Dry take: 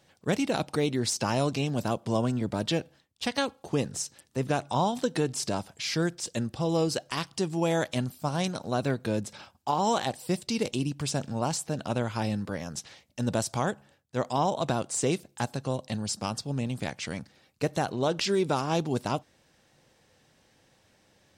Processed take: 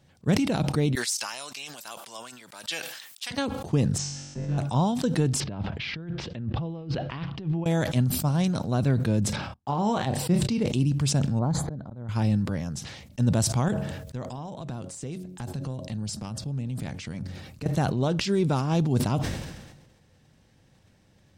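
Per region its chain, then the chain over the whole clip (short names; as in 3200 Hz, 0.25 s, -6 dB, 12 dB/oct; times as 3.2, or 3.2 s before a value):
0.95–3.31 HPF 1400 Hz + high shelf 8000 Hz +11 dB
3.98–4.58 Bessel low-pass 4300 Hz, order 8 + compressor 10:1, threshold -36 dBFS + flutter echo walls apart 3.6 m, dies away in 1.3 s
5.4–7.66 LPF 3300 Hz 24 dB/oct + negative-ratio compressor -38 dBFS
9.36–10.68 gate -55 dBFS, range -48 dB + high shelf 4300 Hz -10.5 dB + doubler 29 ms -11 dB
11.39–12.09 running mean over 16 samples + auto swell 0.6 s
13.68–17.66 de-hum 91.25 Hz, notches 7 + compressor 10:1, threshold -34 dBFS
whole clip: tone controls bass +12 dB, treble -1 dB; sustainer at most 46 dB/s; gain -2.5 dB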